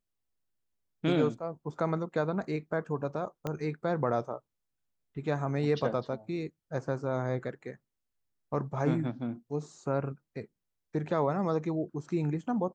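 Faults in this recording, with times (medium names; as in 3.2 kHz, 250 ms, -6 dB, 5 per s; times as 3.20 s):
3.47 s: pop -20 dBFS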